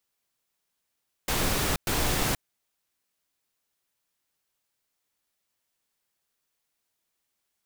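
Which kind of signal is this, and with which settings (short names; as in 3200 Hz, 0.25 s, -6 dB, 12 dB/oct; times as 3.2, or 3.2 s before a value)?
noise bursts pink, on 0.48 s, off 0.11 s, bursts 2, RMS -26 dBFS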